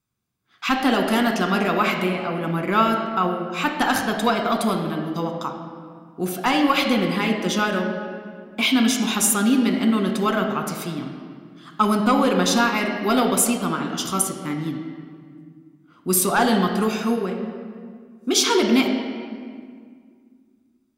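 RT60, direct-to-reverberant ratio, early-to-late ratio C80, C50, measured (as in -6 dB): 2.0 s, 3.0 dB, 6.5 dB, 5.5 dB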